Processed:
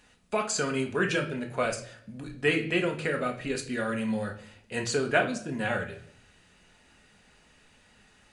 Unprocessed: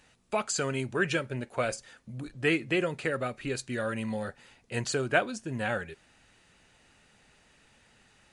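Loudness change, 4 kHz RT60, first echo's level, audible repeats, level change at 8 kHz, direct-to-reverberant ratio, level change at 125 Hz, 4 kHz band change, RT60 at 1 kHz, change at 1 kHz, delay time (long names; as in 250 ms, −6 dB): +2.0 dB, 0.50 s, no echo audible, no echo audible, +1.0 dB, 3.0 dB, 0.0 dB, +2.0 dB, 0.55 s, +2.0 dB, no echo audible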